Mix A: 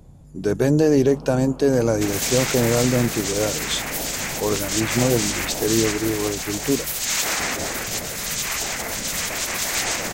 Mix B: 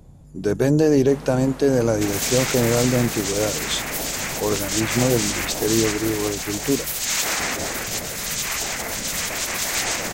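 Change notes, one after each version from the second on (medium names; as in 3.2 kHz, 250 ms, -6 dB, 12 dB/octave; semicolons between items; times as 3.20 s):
first sound: remove boxcar filter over 23 samples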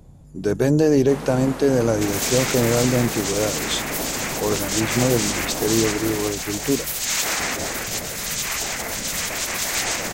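first sound +6.0 dB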